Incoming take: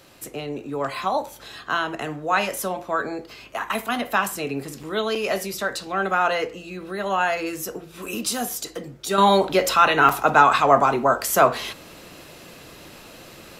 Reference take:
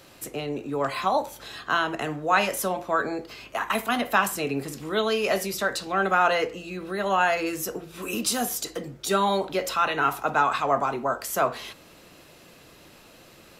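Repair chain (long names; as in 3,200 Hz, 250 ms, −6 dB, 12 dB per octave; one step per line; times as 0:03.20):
repair the gap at 0:04.83/0:05.15/0:08.06/0:10.09, 4.9 ms
level correction −7.5 dB, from 0:09.18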